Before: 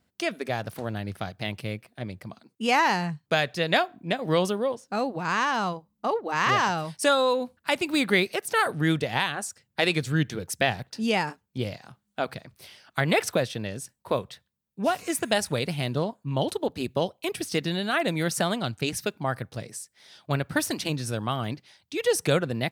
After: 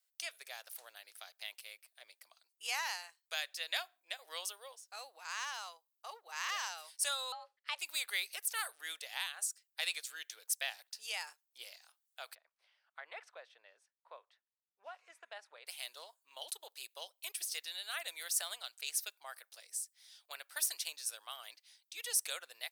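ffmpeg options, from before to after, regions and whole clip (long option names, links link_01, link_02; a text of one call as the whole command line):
ffmpeg -i in.wav -filter_complex "[0:a]asettb=1/sr,asplit=3[link_01][link_02][link_03];[link_01]atrim=end=7.324[link_04];[link_02]atrim=start=7.32:end=7.79,asetpts=PTS-STARTPTS,afade=type=in:duration=0.004:curve=qsin,afade=type=out:start_time=0.466:duration=0.004:curve=qsin,lowpass=3400,afreqshift=310[link_05];[link_03]atrim=start=7.786[link_06];[link_04][link_05]acrossfade=duration=0.004:curve1=hsin:curve2=qsin[link_07];[link_07][link_06]acrossfade=duration=0.004:curve1=qsin:curve2=hsin,asettb=1/sr,asplit=3[link_08][link_09][link_10];[link_08]atrim=end=12.354[link_11];[link_09]atrim=start=12.35:end=15.67,asetpts=PTS-STARTPTS,afade=type=in:duration=0.004:curve=qsin,afade=type=out:start_time=3.316:duration=0.004:curve=qsin,lowpass=1300,equalizer=frequency=230:width=0.37:gain=-3.5[link_12];[link_10]atrim=start=15.666[link_13];[link_11][link_12]acrossfade=duration=0.004:curve1=hsin:curve2=qsin[link_14];[link_14][link_13]acrossfade=duration=0.004:curve1=qsin:curve2=hsin,highpass=frequency=530:width=0.5412,highpass=frequency=530:width=1.3066,aderivative,volume=-2.5dB" out.wav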